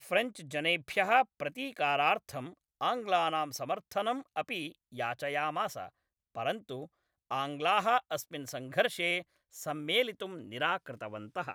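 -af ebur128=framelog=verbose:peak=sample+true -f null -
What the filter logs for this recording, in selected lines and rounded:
Integrated loudness:
  I:         -32.4 LUFS
  Threshold: -42.9 LUFS
Loudness range:
  LRA:         5.2 LU
  Threshold: -53.3 LUFS
  LRA low:   -36.2 LUFS
  LRA high:  -31.0 LUFS
Sample peak:
  Peak:      -12.0 dBFS
True peak:
  Peak:      -12.0 dBFS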